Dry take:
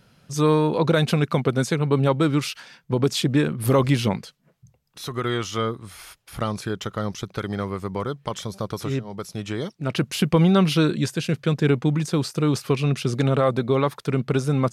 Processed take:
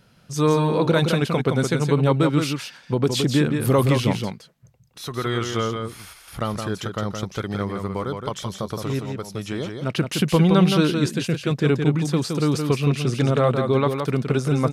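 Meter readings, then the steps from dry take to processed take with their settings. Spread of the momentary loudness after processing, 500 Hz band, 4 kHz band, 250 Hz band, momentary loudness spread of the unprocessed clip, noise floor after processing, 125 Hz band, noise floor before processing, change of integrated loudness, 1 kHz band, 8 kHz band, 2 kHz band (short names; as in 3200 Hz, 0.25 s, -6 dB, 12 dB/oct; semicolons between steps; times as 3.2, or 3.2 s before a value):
11 LU, +1.0 dB, +1.0 dB, +1.0 dB, 12 LU, -53 dBFS, +1.0 dB, -63 dBFS, +1.0 dB, +1.0 dB, +1.0 dB, +1.0 dB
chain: echo 0.168 s -5.5 dB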